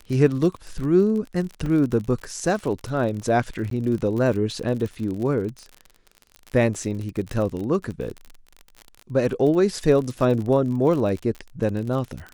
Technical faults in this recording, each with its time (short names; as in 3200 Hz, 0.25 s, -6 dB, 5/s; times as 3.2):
crackle 45/s -29 dBFS
1.66 gap 3.5 ms
3.7–3.71 gap 13 ms